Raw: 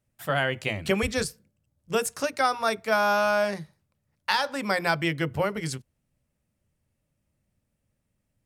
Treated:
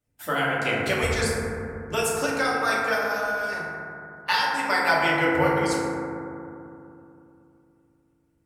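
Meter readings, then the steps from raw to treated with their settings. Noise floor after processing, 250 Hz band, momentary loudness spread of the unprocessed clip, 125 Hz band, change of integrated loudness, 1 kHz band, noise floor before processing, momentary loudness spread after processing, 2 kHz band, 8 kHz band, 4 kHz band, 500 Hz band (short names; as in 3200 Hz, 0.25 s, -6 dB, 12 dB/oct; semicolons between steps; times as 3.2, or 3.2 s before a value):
-67 dBFS, +3.0 dB, 10 LU, +1.5 dB, +2.0 dB, +2.5 dB, -78 dBFS, 14 LU, +4.5 dB, +3.0 dB, +2.0 dB, +1.5 dB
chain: harmonic-percussive split harmonic -13 dB; FDN reverb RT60 2.8 s, low-frequency decay 1.35×, high-frequency decay 0.25×, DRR -6.5 dB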